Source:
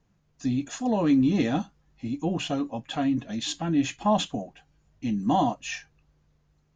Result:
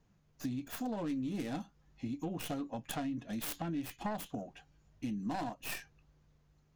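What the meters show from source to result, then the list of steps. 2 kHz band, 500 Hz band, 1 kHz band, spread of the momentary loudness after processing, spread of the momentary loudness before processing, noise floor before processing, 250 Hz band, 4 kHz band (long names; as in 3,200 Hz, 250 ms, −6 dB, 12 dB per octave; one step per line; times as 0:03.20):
−9.0 dB, −13.0 dB, −13.5 dB, 7 LU, 13 LU, −68 dBFS, −13.0 dB, −13.5 dB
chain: stylus tracing distortion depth 0.44 ms
downward compressor 5 to 1, threshold −34 dBFS, peak gain reduction 15 dB
level −2 dB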